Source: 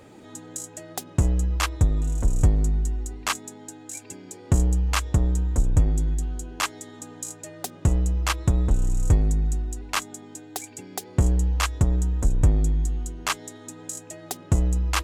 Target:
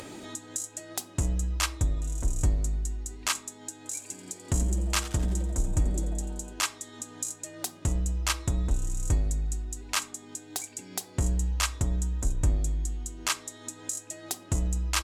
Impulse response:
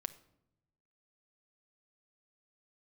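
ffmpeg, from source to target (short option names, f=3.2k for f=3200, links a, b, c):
-filter_complex "[0:a]equalizer=f=7.7k:w=0.3:g=9,acompressor=mode=upward:threshold=-25dB:ratio=2.5,asplit=3[a][b][c];[a]afade=t=out:st=3.84:d=0.02[d];[b]asplit=7[e][f][g][h][i][j][k];[f]adelay=87,afreqshift=140,volume=-15dB[l];[g]adelay=174,afreqshift=280,volume=-19.4dB[m];[h]adelay=261,afreqshift=420,volume=-23.9dB[n];[i]adelay=348,afreqshift=560,volume=-28.3dB[o];[j]adelay=435,afreqshift=700,volume=-32.7dB[p];[k]adelay=522,afreqshift=840,volume=-37.2dB[q];[e][l][m][n][o][p][q]amix=inputs=7:normalize=0,afade=t=in:st=3.84:d=0.02,afade=t=out:st=6.52:d=0.02[r];[c]afade=t=in:st=6.52:d=0.02[s];[d][r][s]amix=inputs=3:normalize=0[t];[1:a]atrim=start_sample=2205,asetrate=83790,aresample=44100[u];[t][u]afir=irnorm=-1:irlink=0"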